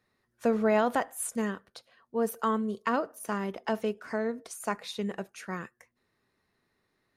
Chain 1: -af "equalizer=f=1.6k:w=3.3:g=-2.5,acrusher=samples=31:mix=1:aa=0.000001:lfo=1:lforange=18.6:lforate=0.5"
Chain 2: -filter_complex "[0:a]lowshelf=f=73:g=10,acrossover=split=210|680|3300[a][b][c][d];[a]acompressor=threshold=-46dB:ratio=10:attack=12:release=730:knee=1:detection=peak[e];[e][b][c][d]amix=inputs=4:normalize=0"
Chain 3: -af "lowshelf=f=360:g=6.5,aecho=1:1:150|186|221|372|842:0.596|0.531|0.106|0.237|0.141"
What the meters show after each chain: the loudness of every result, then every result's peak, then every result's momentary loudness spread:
-31.5, -32.0, -26.5 LUFS; -15.0, -14.5, -8.5 dBFS; 14, 13, 13 LU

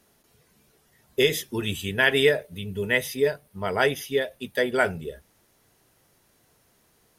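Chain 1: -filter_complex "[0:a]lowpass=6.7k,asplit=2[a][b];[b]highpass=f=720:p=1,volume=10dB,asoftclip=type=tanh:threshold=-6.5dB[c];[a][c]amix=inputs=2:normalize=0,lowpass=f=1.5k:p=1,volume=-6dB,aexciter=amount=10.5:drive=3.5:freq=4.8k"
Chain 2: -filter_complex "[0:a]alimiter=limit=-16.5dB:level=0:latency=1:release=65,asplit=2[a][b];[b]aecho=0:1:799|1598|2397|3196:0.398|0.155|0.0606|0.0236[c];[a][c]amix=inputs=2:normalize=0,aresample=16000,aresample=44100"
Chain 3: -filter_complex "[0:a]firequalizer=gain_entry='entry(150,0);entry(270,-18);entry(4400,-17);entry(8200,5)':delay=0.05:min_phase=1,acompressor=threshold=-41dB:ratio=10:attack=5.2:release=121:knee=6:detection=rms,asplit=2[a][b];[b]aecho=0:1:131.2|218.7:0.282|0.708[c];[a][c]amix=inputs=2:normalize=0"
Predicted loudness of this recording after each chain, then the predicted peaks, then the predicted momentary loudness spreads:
-24.5, -29.0, -44.5 LUFS; -9.0, -13.5, -30.5 dBFS; 11, 17, 16 LU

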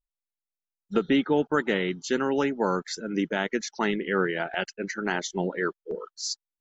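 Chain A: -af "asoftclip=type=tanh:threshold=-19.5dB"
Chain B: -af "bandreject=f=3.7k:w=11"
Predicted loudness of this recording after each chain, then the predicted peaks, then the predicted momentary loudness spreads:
-30.0, -28.0 LUFS; -19.5, -10.0 dBFS; 6, 8 LU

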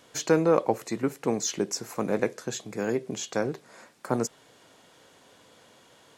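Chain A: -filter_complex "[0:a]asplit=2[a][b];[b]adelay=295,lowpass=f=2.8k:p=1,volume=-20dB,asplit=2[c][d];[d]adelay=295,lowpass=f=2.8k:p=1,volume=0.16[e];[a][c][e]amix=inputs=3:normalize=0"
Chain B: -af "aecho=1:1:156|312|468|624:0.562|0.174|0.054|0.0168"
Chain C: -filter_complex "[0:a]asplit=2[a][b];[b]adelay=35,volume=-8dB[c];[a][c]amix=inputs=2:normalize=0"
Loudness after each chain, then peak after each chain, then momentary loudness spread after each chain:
-28.5, -27.0, -27.5 LUFS; -8.0, -7.0, -8.0 dBFS; 10, 13, 10 LU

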